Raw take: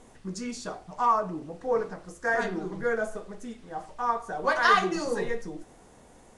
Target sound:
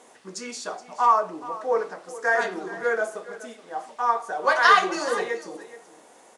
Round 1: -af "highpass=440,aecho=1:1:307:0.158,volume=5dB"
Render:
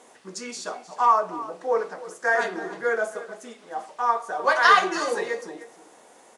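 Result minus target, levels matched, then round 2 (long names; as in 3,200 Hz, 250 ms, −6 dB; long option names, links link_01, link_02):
echo 116 ms early
-af "highpass=440,aecho=1:1:423:0.158,volume=5dB"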